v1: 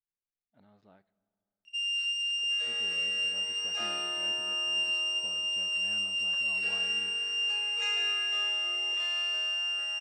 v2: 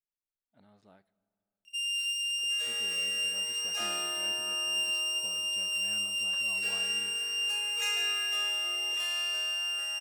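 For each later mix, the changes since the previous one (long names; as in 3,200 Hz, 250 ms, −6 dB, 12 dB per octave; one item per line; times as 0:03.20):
first sound −3.5 dB
master: remove high-frequency loss of the air 130 metres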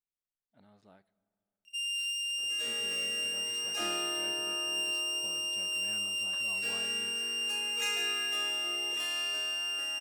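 first sound: send −9.0 dB
second sound: remove high-pass filter 500 Hz 12 dB per octave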